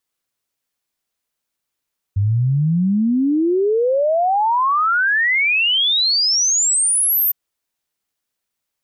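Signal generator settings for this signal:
exponential sine sweep 96 Hz → 14,000 Hz 5.16 s −13.5 dBFS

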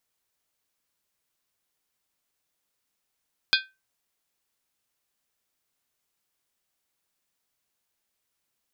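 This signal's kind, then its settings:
struck skin, lowest mode 1,550 Hz, modes 7, decay 0.25 s, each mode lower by 0.5 dB, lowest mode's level −19 dB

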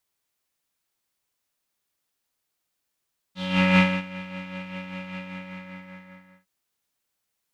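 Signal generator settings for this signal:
subtractive patch with tremolo F#3, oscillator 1 square, interval +7 semitones, oscillator 2 level −8 dB, sub −18 dB, noise −5 dB, filter lowpass, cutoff 1,900 Hz, Q 3.9, filter envelope 1 octave, attack 408 ms, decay 0.26 s, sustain −19.5 dB, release 1.30 s, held 1.81 s, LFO 5.1 Hz, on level 5.5 dB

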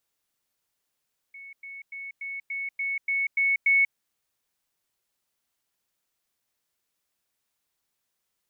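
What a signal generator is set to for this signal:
level staircase 2,210 Hz −41 dBFS, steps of 3 dB, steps 9, 0.19 s 0.10 s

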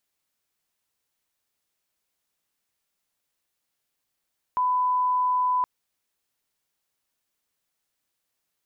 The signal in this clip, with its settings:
line-up tone −20 dBFS 1.07 s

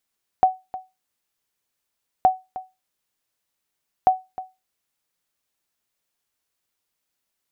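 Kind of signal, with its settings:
ping with an echo 749 Hz, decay 0.23 s, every 1.82 s, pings 3, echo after 0.31 s, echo −16.5 dB −7 dBFS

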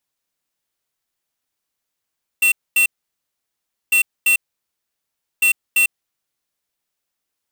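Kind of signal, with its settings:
beeps in groups square 2,710 Hz, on 0.10 s, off 0.24 s, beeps 2, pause 1.06 s, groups 3, −14 dBFS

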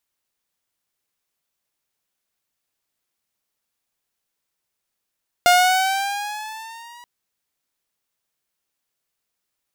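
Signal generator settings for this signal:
pitch glide with a swell saw, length 1.58 s, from 706 Hz, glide +5.5 semitones, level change −31 dB, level −7.5 dB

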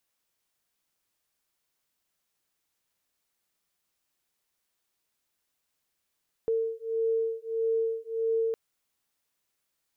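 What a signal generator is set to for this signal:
two tones that beat 451 Hz, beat 1.6 Hz, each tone −29 dBFS 2.06 s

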